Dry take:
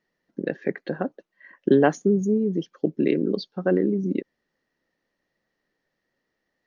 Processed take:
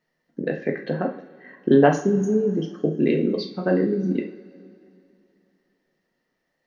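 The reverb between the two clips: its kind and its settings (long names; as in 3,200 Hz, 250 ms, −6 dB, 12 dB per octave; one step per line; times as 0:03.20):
coupled-rooms reverb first 0.4 s, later 2.7 s, from −21 dB, DRR 0.5 dB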